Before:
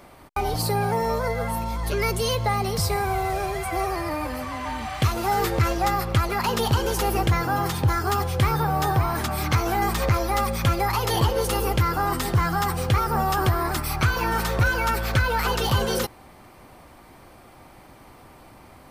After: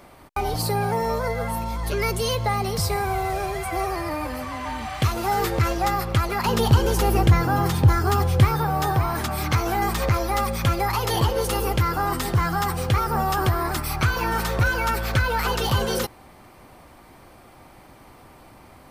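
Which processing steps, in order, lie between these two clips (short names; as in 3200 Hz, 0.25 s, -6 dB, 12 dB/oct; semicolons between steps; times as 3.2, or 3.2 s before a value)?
6.45–8.45 low shelf 360 Hz +6.5 dB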